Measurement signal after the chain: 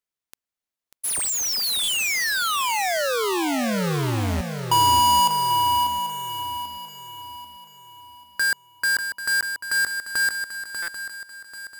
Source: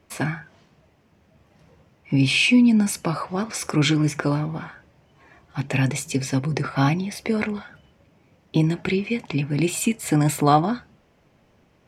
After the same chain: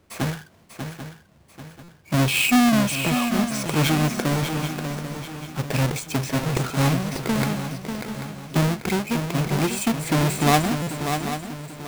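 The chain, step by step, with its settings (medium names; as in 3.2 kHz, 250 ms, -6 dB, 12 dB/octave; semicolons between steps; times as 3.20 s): square wave that keeps the level; shuffle delay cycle 789 ms, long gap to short 3:1, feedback 39%, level -7.5 dB; buffer glitch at 1.83/10.82 s, samples 256, times 8; trim -5 dB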